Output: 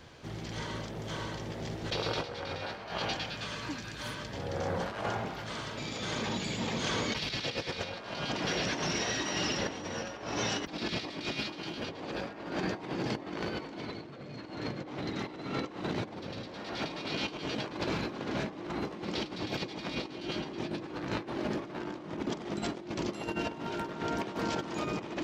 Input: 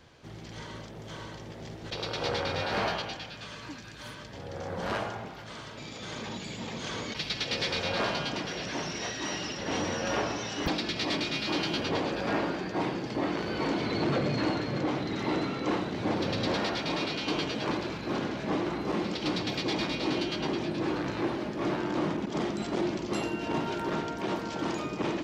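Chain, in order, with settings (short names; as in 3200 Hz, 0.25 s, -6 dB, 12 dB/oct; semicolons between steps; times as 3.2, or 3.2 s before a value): negative-ratio compressor -35 dBFS, ratio -0.5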